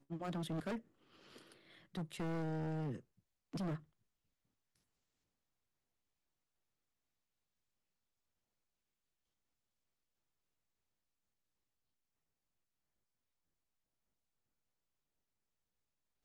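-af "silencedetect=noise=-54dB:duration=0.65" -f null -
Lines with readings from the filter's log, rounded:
silence_start: 3.80
silence_end: 16.24 | silence_duration: 12.44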